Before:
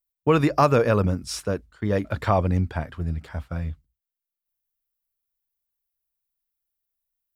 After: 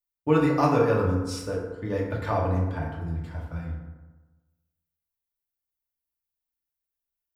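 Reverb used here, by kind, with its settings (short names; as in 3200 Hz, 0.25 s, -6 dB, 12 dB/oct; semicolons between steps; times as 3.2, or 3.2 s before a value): FDN reverb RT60 1.2 s, low-frequency decay 1×, high-frequency decay 0.45×, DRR -3.5 dB; gain -9 dB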